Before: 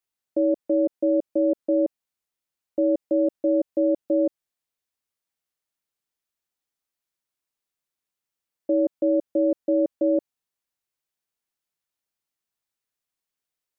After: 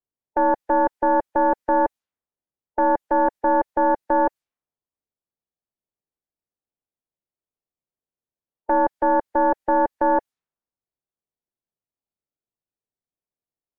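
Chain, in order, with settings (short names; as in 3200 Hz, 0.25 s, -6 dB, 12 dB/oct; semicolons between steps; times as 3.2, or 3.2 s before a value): tracing distortion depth 0.11 ms; low-pass opened by the level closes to 470 Hz, open at -22 dBFS; formant shift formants +6 st; gain +2.5 dB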